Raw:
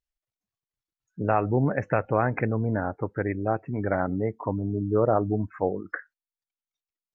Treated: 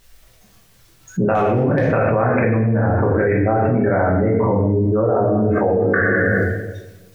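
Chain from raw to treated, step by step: 1.35–1.88 hard clip -12.5 dBFS, distortion -32 dB; reverb RT60 1.0 s, pre-delay 5 ms, DRR -4 dB; fast leveller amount 100%; gain -5 dB

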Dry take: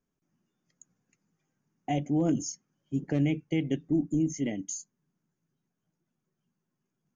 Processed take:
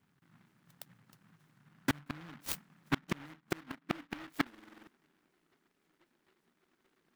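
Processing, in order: high-pass sweep 110 Hz -> 360 Hz, 1.25–5.25; flipped gate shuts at -20 dBFS, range -37 dB; in parallel at -8.5 dB: sample-and-hold 16×; on the sum: Butterworth band-stop 800 Hz, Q 1.6; limiter -25.5 dBFS, peak gain reduction 8 dB; stuck buffer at 4.5, samples 2048, times 7; noise-modulated delay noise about 1300 Hz, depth 0.37 ms; gain +6 dB

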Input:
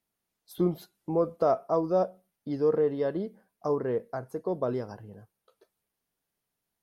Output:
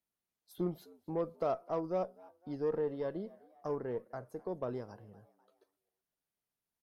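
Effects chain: added harmonics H 6 -29 dB, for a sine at -13.5 dBFS; frequency-shifting echo 0.255 s, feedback 48%, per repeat +90 Hz, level -24 dB; gain -9 dB

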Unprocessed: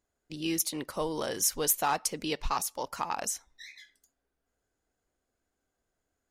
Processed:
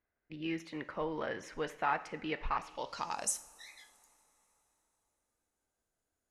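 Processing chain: two-slope reverb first 0.5 s, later 3.9 s, from -18 dB, DRR 10.5 dB; low-pass sweep 2000 Hz -> 11000 Hz, 2.58–3.36; gain -6 dB

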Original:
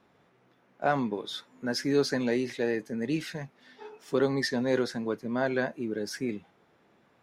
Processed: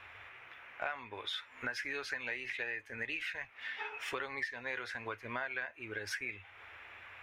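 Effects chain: EQ curve 100 Hz 0 dB, 150 Hz -29 dB, 2500 Hz +11 dB, 4500 Hz -9 dB; compressor 6:1, threshold -51 dBFS, peak gain reduction 26.5 dB; gain +13 dB

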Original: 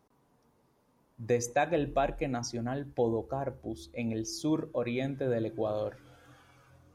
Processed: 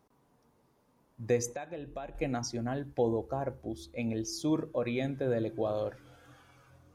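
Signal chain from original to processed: 1.52–2.15 compressor 4:1, threshold -40 dBFS, peak gain reduction 14.5 dB

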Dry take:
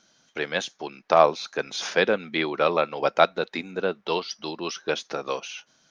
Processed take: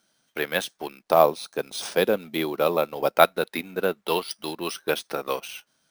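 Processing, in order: G.711 law mismatch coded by A; 1.02–3.17 bell 1800 Hz -8 dB 1.5 oct; careless resampling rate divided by 3×, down none, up hold; gain +2 dB

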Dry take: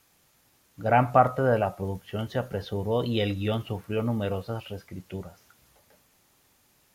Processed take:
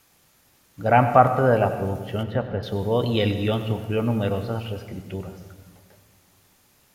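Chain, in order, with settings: 2.23–2.63 air absorption 310 m; reverb RT60 1.4 s, pre-delay 96 ms, DRR 9.5 dB; gain +4 dB

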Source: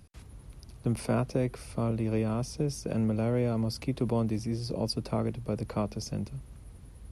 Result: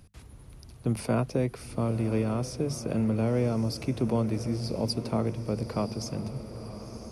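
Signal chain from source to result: notches 50/100/150/200 Hz; diffused feedback echo 1.01 s, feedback 55%, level -12 dB; gain +1.5 dB

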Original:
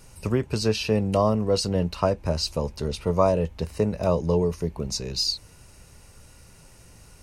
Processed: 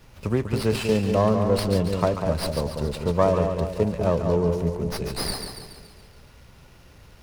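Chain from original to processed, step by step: split-band echo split 1000 Hz, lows 0.194 s, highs 0.141 s, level -6 dB; running maximum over 5 samples

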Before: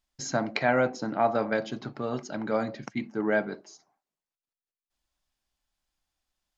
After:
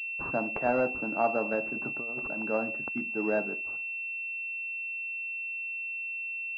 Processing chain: HPF 200 Hz 12 dB/oct; 1.73–2.42 negative-ratio compressor -36 dBFS, ratio -0.5; pulse-width modulation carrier 2700 Hz; gain -2 dB

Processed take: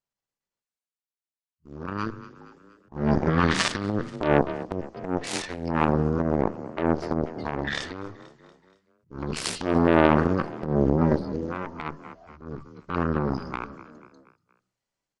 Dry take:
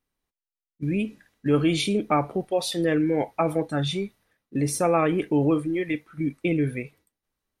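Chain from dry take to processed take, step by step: added harmonics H 2 -6 dB, 7 -15 dB, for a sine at -9 dBFS; frequency-shifting echo 0.119 s, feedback 53%, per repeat +59 Hz, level -23 dB; transient shaper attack -12 dB, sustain +7 dB; speed mistake 15 ips tape played at 7.5 ips; low shelf 140 Hz -10 dB; gain +4 dB

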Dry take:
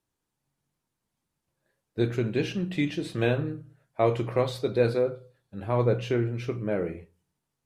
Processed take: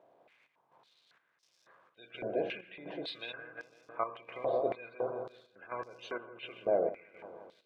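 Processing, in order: per-bin compression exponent 0.6; bell 3300 Hz +3 dB 0.29 oct; spectral gate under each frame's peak -25 dB strong; crackle 560/s -51 dBFS; dark delay 0.168 s, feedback 64%, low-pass 1900 Hz, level -7 dB; chopper 1.4 Hz, depth 65%, duty 65%; stepped band-pass 3.6 Hz 670–5400 Hz; gain +2.5 dB

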